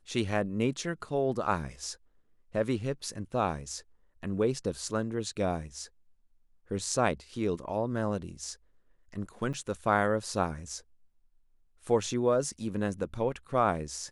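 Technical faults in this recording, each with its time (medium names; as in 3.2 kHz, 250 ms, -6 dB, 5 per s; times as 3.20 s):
9.53–9.54 s: dropout 7.4 ms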